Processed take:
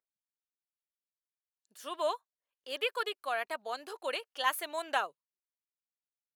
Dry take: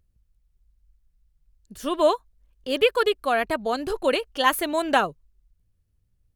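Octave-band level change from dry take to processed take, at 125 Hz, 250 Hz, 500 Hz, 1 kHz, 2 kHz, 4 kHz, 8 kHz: no reading, -23.0 dB, -14.5 dB, -10.0 dB, -9.0 dB, -9.0 dB, -9.0 dB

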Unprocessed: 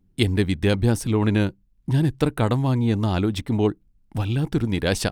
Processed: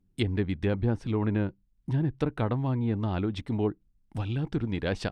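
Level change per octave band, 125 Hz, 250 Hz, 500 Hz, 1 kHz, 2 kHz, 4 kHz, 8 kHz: -7.0 dB, -7.0 dB, -7.0 dB, -7.0 dB, -8.5 dB, -11.5 dB, under -15 dB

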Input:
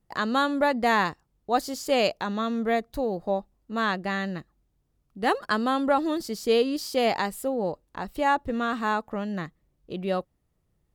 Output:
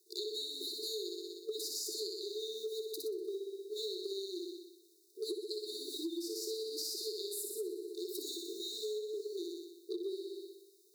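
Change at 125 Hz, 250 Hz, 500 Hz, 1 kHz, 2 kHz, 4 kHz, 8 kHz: under -40 dB, -16.5 dB, -12.0 dB, under -40 dB, under -40 dB, -4.5 dB, -0.5 dB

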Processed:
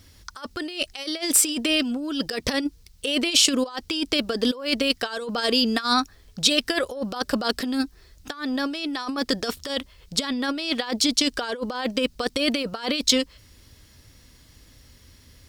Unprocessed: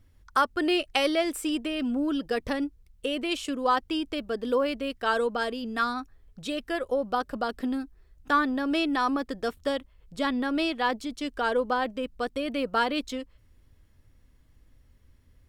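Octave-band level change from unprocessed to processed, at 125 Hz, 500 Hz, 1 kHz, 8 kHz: +9.0 dB, +0.5 dB, -3.5 dB, +20.0 dB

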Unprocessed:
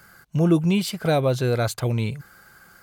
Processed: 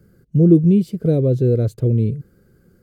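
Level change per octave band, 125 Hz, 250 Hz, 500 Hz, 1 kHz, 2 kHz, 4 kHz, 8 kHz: +7.0 dB, +7.0 dB, +4.0 dB, under -15 dB, under -15 dB, under -15 dB, under -10 dB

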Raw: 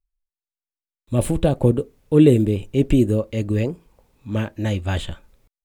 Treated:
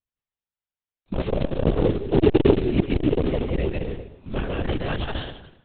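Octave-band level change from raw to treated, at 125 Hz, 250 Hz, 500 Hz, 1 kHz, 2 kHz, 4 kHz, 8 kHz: -5.5 dB, -4.0 dB, -1.5 dB, +2.0 dB, +0.5 dB, +0.5 dB, under -40 dB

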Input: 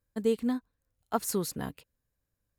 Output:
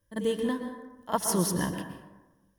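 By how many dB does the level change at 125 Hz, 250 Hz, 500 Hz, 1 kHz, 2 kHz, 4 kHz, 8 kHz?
+7.5 dB, +2.0 dB, +1.0 dB, +4.0 dB, +7.5 dB, +5.5 dB, +6.0 dB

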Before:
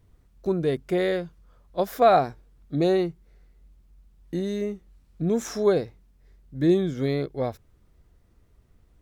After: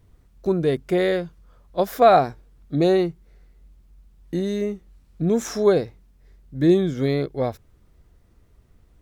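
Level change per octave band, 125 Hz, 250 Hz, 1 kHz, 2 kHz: +3.5 dB, +3.5 dB, +3.5 dB, +3.5 dB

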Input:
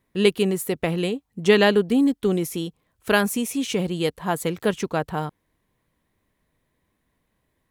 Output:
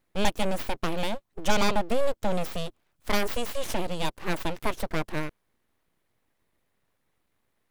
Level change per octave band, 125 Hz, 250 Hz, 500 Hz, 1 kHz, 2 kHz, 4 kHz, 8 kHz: -7.0 dB, -10.5 dB, -8.5 dB, -1.5 dB, -6.5 dB, -5.0 dB, -5.5 dB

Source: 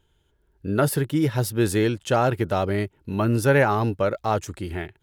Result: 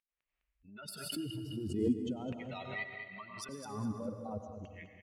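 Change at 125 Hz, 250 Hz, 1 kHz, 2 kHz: -20.0 dB, -12.5 dB, -22.0 dB, -17.0 dB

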